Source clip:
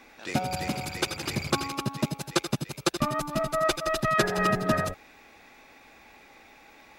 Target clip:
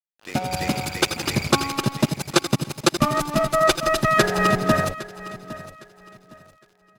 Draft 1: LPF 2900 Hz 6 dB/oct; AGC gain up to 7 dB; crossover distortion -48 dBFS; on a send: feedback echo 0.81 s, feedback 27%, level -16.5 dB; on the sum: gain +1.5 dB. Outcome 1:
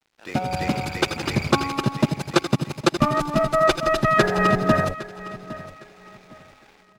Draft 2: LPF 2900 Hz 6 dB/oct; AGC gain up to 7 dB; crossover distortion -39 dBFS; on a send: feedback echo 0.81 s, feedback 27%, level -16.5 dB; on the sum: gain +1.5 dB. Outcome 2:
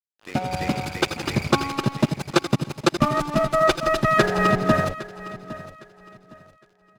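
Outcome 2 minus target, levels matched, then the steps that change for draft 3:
4000 Hz band -3.5 dB
remove: LPF 2900 Hz 6 dB/oct

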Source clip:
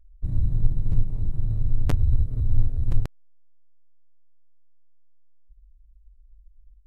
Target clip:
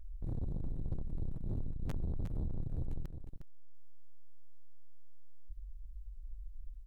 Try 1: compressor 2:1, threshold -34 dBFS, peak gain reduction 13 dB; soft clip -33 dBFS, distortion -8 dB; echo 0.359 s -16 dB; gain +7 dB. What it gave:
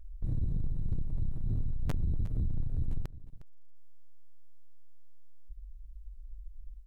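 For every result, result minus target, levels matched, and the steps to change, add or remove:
echo-to-direct -7.5 dB; soft clip: distortion -4 dB
change: echo 0.359 s -8.5 dB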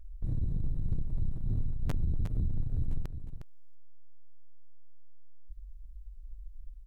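soft clip: distortion -4 dB
change: soft clip -41 dBFS, distortion -4 dB

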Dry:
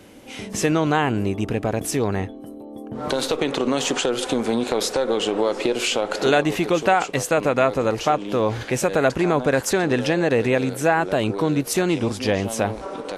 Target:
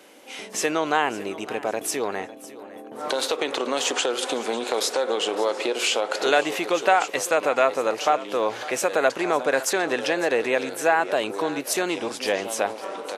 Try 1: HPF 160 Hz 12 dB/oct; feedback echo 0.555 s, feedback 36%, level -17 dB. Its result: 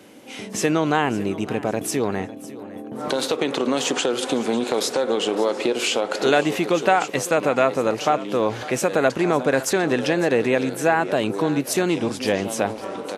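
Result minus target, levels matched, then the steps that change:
125 Hz band +13.5 dB
change: HPF 460 Hz 12 dB/oct

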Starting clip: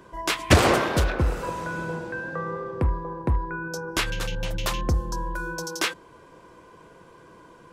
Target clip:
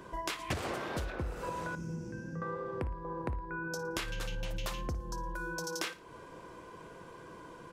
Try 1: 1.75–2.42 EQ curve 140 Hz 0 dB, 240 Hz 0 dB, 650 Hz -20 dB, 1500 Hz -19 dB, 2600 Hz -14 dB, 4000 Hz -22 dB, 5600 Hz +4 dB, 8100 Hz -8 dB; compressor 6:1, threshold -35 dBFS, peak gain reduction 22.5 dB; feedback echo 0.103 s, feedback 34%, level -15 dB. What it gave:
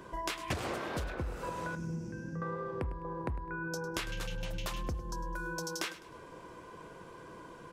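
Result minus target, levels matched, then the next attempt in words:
echo 46 ms late
1.75–2.42 EQ curve 140 Hz 0 dB, 240 Hz 0 dB, 650 Hz -20 dB, 1500 Hz -19 dB, 2600 Hz -14 dB, 4000 Hz -22 dB, 5600 Hz +4 dB, 8100 Hz -8 dB; compressor 6:1, threshold -35 dBFS, peak gain reduction 22.5 dB; feedback echo 57 ms, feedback 34%, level -15 dB

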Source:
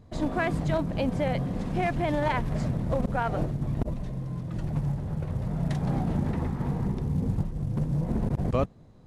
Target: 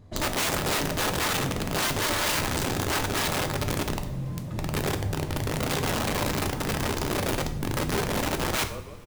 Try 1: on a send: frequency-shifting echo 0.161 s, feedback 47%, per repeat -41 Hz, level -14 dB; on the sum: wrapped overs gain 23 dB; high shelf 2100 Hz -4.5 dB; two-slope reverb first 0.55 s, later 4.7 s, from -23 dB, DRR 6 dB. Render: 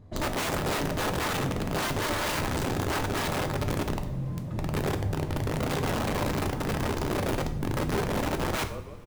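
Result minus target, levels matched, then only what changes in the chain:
4000 Hz band -3.5 dB
change: high shelf 2100 Hz +3 dB

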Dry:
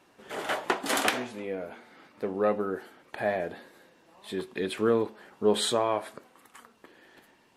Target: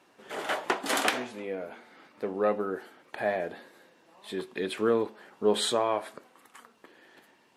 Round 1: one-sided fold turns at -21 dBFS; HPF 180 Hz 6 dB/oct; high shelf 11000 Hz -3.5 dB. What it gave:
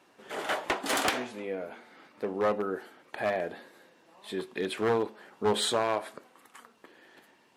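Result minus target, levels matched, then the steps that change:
one-sided fold: distortion +23 dB
change: one-sided fold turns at -12.5 dBFS

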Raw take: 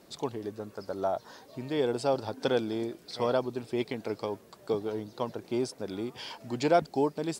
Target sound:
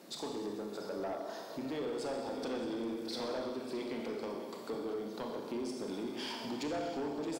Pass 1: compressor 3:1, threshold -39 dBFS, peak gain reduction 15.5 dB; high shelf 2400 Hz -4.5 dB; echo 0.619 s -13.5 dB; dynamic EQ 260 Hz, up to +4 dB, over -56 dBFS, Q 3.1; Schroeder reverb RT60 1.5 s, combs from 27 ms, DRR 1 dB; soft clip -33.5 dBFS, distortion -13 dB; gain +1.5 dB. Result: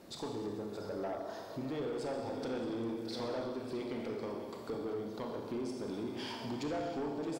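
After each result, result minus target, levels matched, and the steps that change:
125 Hz band +6.0 dB; 4000 Hz band -3.0 dB
add after dynamic EQ: HPF 160 Hz 24 dB/oct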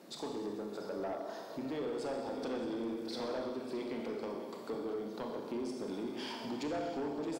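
4000 Hz band -2.5 dB
remove: high shelf 2400 Hz -4.5 dB

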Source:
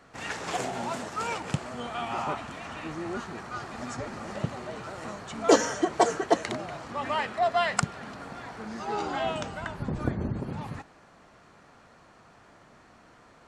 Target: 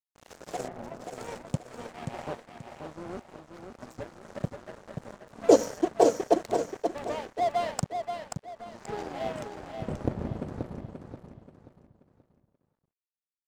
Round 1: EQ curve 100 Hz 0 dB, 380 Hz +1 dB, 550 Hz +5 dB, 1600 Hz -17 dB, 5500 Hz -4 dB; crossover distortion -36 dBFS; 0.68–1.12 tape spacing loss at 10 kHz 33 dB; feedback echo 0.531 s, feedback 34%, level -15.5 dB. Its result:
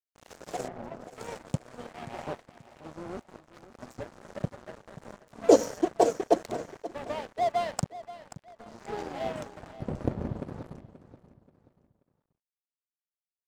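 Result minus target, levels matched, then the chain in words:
echo-to-direct -9 dB
EQ curve 100 Hz 0 dB, 380 Hz +1 dB, 550 Hz +5 dB, 1600 Hz -17 dB, 5500 Hz -4 dB; crossover distortion -36 dBFS; 0.68–1.12 tape spacing loss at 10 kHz 33 dB; feedback echo 0.531 s, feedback 34%, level -6.5 dB

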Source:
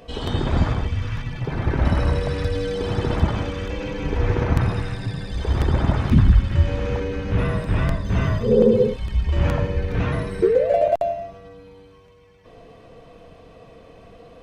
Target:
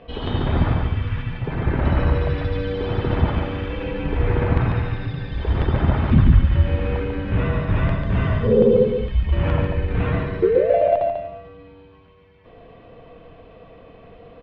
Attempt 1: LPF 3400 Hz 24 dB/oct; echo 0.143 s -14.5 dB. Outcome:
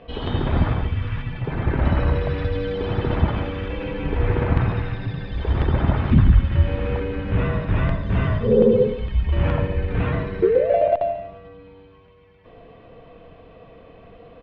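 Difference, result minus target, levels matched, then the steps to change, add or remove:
echo-to-direct -9 dB
change: echo 0.143 s -5.5 dB

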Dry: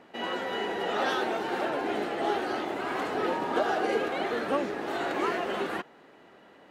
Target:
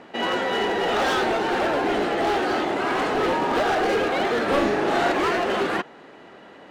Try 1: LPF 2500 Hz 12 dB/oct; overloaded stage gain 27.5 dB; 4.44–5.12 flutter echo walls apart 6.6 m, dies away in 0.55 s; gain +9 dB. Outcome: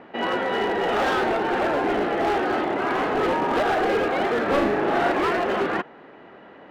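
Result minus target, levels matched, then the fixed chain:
8000 Hz band -6.5 dB
LPF 8900 Hz 12 dB/oct; overloaded stage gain 27.5 dB; 4.44–5.12 flutter echo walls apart 6.6 m, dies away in 0.55 s; gain +9 dB

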